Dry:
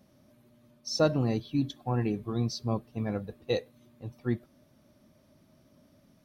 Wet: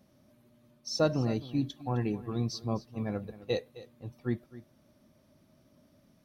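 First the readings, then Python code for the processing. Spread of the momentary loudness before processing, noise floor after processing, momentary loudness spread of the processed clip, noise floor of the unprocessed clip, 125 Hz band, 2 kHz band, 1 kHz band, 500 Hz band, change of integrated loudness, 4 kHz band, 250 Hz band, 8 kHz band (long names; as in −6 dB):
10 LU, −66 dBFS, 18 LU, −64 dBFS, −2.0 dB, −2.0 dB, −2.0 dB, −2.0 dB, −2.0 dB, −2.0 dB, −2.0 dB, can't be measured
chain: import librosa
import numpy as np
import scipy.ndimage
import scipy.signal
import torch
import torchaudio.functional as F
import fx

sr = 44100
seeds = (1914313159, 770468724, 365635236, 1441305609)

y = x + 10.0 ** (-17.0 / 20.0) * np.pad(x, (int(261 * sr / 1000.0), 0))[:len(x)]
y = y * librosa.db_to_amplitude(-2.0)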